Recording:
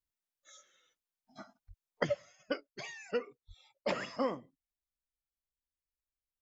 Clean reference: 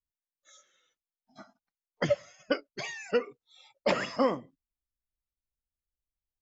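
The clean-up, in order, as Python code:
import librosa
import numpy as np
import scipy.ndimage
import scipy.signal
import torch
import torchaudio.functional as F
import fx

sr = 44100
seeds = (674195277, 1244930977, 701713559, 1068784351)

y = fx.fix_deplosive(x, sr, at_s=(1.67, 3.47))
y = fx.fix_level(y, sr, at_s=2.03, step_db=7.0)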